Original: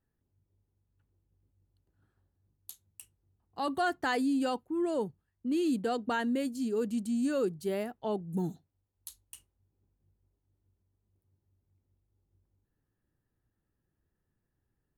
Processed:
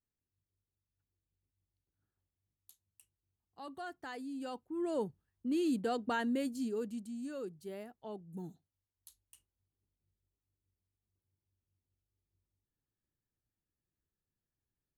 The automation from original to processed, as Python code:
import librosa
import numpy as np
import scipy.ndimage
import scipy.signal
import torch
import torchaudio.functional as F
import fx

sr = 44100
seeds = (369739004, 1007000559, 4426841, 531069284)

y = fx.gain(x, sr, db=fx.line((4.25, -14.5), (4.98, -3.0), (6.59, -3.0), (7.13, -12.0)))